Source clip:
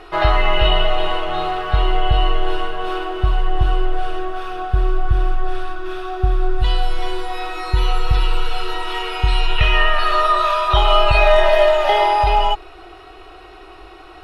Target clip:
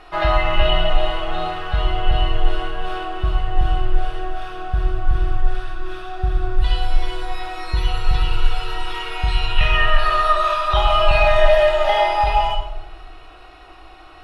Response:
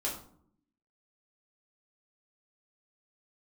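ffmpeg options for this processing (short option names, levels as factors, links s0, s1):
-filter_complex "[0:a]equalizer=f=400:t=o:w=0.34:g=-12,asplit=2[s0][s1];[1:a]atrim=start_sample=2205,asetrate=22050,aresample=44100[s2];[s1][s2]afir=irnorm=-1:irlink=0,volume=0.376[s3];[s0][s3]amix=inputs=2:normalize=0,volume=0.473"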